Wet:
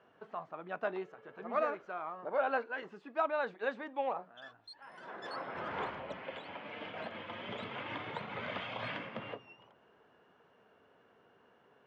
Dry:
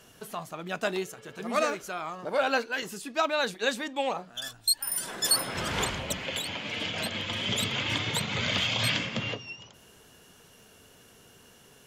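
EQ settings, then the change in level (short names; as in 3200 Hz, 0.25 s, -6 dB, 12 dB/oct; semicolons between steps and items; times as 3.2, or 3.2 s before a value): HPF 810 Hz 6 dB/oct; LPF 1200 Hz 12 dB/oct; air absorption 87 m; 0.0 dB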